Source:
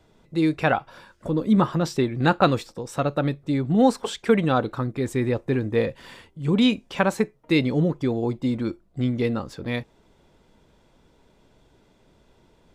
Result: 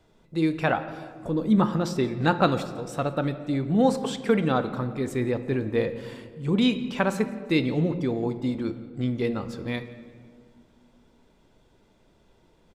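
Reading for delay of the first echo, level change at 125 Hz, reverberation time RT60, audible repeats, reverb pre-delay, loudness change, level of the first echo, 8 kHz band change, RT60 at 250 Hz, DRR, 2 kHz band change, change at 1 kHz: 0.174 s, -3.0 dB, 2.0 s, 2, 3 ms, -2.5 dB, -22.5 dB, -3.0 dB, 2.8 s, 10.0 dB, -2.5 dB, -2.5 dB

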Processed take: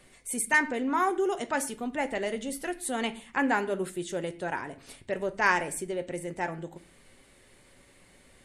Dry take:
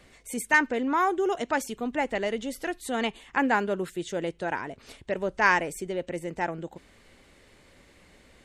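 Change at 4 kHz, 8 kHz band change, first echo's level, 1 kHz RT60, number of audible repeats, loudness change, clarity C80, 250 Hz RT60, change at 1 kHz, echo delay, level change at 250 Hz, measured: -2.0 dB, +4.5 dB, none, 0.40 s, none, -2.0 dB, 20.5 dB, 0.70 s, -2.5 dB, none, -2.0 dB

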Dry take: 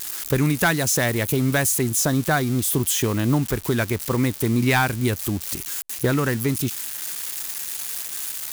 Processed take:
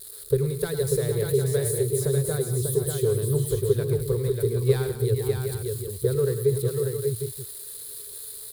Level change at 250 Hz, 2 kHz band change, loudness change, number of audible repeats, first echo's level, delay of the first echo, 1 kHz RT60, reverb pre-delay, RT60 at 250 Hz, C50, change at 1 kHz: -10.5 dB, -18.0 dB, -3.5 dB, 5, -11.0 dB, 0.104 s, none, none, none, none, -17.5 dB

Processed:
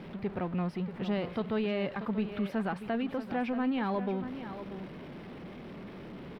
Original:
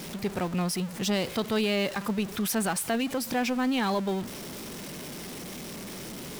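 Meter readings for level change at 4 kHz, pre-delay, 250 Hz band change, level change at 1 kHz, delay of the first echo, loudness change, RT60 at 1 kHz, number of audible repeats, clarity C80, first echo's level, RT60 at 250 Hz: -13.5 dB, none, -3.0 dB, -4.5 dB, 0.635 s, -4.0 dB, none, 1, none, -11.0 dB, none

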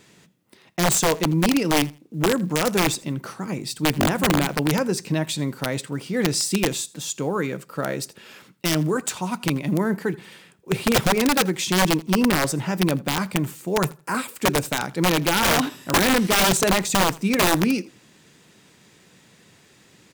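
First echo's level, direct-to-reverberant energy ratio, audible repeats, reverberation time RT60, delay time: -22.5 dB, none, 1, none, 82 ms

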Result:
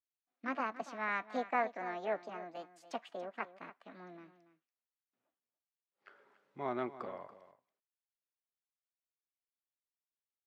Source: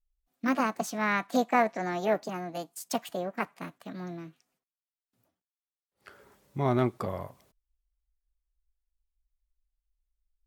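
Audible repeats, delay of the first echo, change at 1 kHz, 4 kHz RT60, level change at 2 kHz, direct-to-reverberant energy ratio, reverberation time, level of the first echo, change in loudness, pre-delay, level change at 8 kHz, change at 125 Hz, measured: 1, 0.284 s, -8.0 dB, none, -7.0 dB, none, none, -15.0 dB, -9.0 dB, none, under -20 dB, -22.5 dB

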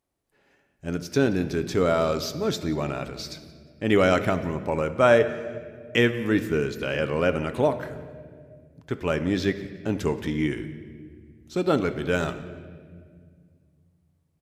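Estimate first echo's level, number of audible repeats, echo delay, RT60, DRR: -21.5 dB, 2, 0.177 s, 1.9 s, 9.0 dB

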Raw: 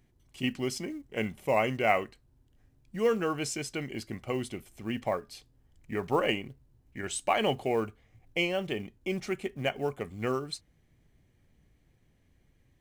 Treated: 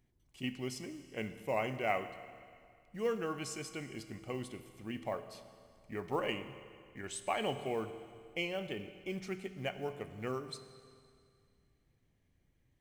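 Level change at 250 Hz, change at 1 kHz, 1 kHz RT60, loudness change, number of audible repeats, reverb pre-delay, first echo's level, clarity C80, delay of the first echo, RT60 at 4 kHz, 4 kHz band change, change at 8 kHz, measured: -7.5 dB, -7.5 dB, 2.2 s, -7.5 dB, none, 22 ms, none, 12.0 dB, none, 2.2 s, -7.5 dB, -7.5 dB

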